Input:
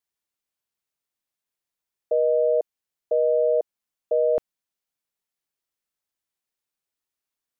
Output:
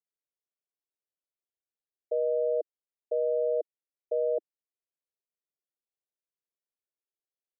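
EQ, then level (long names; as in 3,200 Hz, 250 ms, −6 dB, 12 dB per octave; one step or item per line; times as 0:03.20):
Butterworth high-pass 320 Hz 48 dB per octave
Butterworth low-pass 650 Hz 36 dB per octave
−6.0 dB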